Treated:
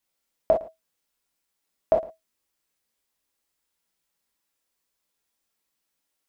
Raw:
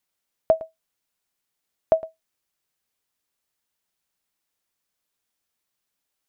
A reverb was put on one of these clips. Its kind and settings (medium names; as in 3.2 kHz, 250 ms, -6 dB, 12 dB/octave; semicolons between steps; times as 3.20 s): gated-style reverb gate 80 ms flat, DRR -1 dB; trim -2.5 dB